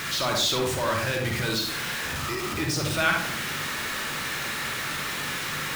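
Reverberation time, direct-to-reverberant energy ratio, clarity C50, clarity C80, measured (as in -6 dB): 0.55 s, 1.5 dB, 3.5 dB, 8.5 dB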